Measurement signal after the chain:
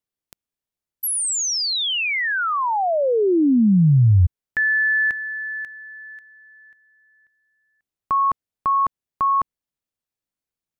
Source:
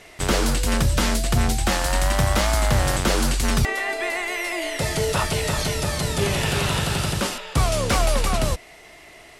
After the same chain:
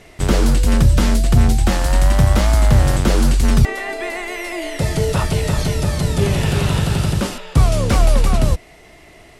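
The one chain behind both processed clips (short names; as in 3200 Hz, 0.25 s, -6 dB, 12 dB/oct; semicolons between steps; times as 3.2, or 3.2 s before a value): low shelf 410 Hz +10.5 dB; gain -1.5 dB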